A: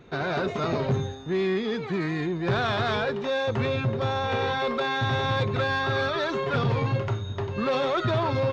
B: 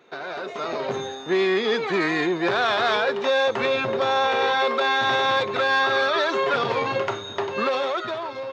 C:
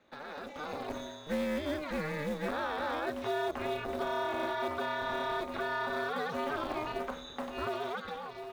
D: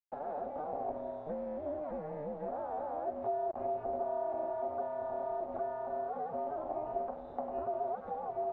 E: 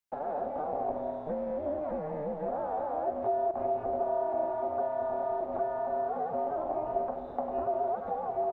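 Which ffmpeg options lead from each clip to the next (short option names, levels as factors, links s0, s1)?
-af "highpass=420,alimiter=limit=0.0668:level=0:latency=1:release=487,dynaudnorm=f=130:g=13:m=3.55"
-filter_complex "[0:a]acrossover=split=110|530|1500[s0][s1][s2][s3];[s1]acrusher=bits=4:mode=log:mix=0:aa=0.000001[s4];[s3]alimiter=level_in=1.5:limit=0.0631:level=0:latency=1:release=123,volume=0.668[s5];[s0][s4][s2][s5]amix=inputs=4:normalize=0,aeval=exprs='val(0)*sin(2*PI*150*n/s)':c=same,volume=0.376"
-af "acompressor=threshold=0.01:ratio=16,acrusher=bits=7:mix=0:aa=0.000001,lowpass=f=710:t=q:w=4.9"
-af "aecho=1:1:208:0.266,volume=1.78"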